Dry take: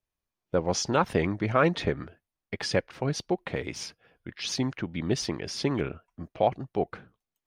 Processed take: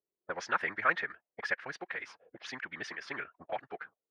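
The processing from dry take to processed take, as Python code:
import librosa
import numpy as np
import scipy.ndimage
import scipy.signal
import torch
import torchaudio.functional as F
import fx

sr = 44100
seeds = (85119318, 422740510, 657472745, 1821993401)

y = fx.auto_wah(x, sr, base_hz=400.0, top_hz=1700.0, q=4.1, full_db=-30.0, direction='up')
y = fx.stretch_vocoder(y, sr, factor=0.55)
y = y * 10.0 ** (9.0 / 20.0)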